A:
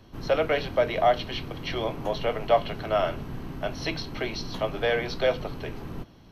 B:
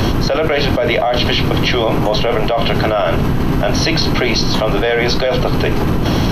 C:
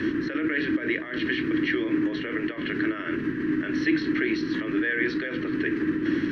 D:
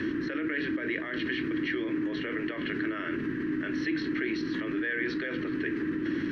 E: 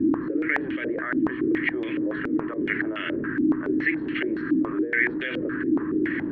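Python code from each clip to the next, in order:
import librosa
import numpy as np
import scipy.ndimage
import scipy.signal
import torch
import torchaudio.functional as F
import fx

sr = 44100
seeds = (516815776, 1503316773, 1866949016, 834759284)

y1 = fx.env_flatten(x, sr, amount_pct=100)
y1 = y1 * librosa.db_to_amplitude(1.5)
y2 = fx.double_bandpass(y1, sr, hz=740.0, octaves=2.5)
y3 = fx.env_flatten(y2, sr, amount_pct=50)
y3 = y3 * librosa.db_to_amplitude(-8.0)
y4 = fx.filter_held_lowpass(y3, sr, hz=7.1, low_hz=290.0, high_hz=2900.0)
y4 = y4 * librosa.db_to_amplitude(1.5)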